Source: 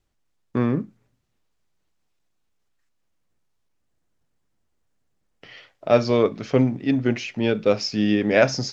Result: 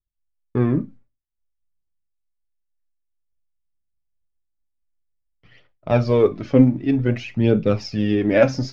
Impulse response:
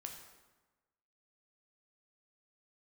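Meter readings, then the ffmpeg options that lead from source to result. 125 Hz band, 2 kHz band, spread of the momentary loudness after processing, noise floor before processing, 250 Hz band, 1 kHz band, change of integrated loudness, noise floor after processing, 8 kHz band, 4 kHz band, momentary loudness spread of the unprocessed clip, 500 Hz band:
+6.0 dB, -2.5 dB, 8 LU, -72 dBFS, +3.0 dB, -1.5 dB, +2.0 dB, -76 dBFS, n/a, -5.5 dB, 8 LU, +1.0 dB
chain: -filter_complex "[0:a]aemphasis=mode=reproduction:type=bsi,aphaser=in_gain=1:out_gain=1:delay=3.9:decay=0.49:speed=0.53:type=triangular,agate=range=-33dB:threshold=-35dB:ratio=3:detection=peak,asplit=2[a][b];[1:a]atrim=start_sample=2205,atrim=end_sample=4410,asetrate=74970,aresample=44100[c];[b][c]afir=irnorm=-1:irlink=0,volume=3.5dB[d];[a][d]amix=inputs=2:normalize=0,volume=-5.5dB"

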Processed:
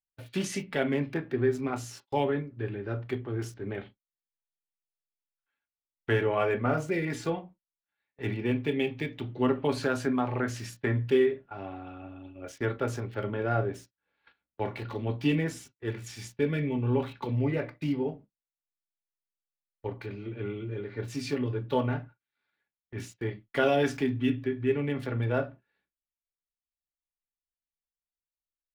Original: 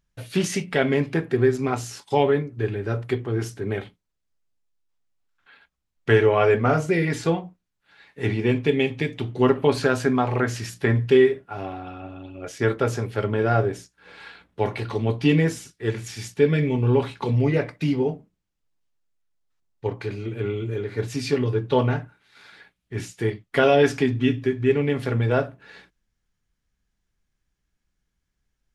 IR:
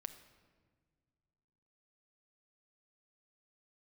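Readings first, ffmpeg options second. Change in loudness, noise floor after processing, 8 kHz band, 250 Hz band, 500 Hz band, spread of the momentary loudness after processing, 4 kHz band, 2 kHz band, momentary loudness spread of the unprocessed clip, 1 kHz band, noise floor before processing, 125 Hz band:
-7.5 dB, under -85 dBFS, -7.5 dB, -6.5 dB, -8.5 dB, 12 LU, -7.5 dB, -7.5 dB, 13 LU, -7.5 dB, -78 dBFS, -8.0 dB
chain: -filter_complex "[0:a]agate=range=-25dB:threshold=-39dB:ratio=16:detection=peak[a];[1:a]atrim=start_sample=2205,atrim=end_sample=3528,asetrate=79380,aresample=44100[b];[a][b]afir=irnorm=-1:irlink=0,acrossover=split=380|4500[c][d][e];[e]aeval=exprs='val(0)*gte(abs(val(0)),0.00126)':c=same[f];[c][d][f]amix=inputs=3:normalize=0,volume=2dB"

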